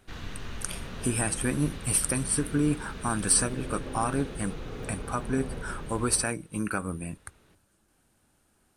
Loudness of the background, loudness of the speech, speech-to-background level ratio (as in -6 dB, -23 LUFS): -40.0 LUFS, -29.0 LUFS, 11.0 dB